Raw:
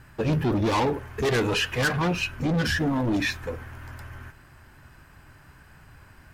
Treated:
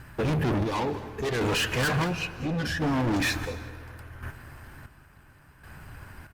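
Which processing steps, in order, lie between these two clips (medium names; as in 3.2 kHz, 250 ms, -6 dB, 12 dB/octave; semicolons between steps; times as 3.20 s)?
in parallel at +2 dB: gain riding 0.5 s; on the sum: square tremolo 0.71 Hz, depth 65%, duty 45%; overload inside the chain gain 21 dB; delay 207 ms -18.5 dB; on a send at -14.5 dB: reverberation RT60 2.5 s, pre-delay 120 ms; on the sum: trim -3 dB; Opus 48 kbps 48 kHz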